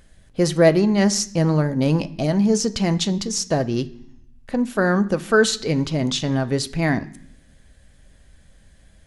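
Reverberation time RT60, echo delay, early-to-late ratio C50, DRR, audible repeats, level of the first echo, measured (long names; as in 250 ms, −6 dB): 0.65 s, no echo audible, 18.0 dB, 9.0 dB, no echo audible, no echo audible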